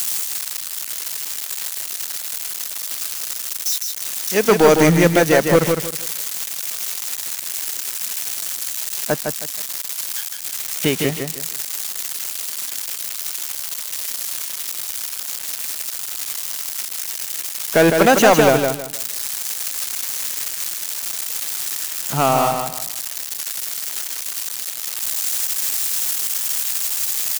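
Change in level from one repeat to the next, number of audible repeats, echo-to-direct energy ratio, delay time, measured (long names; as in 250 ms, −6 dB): −11.5 dB, 3, −4.5 dB, 158 ms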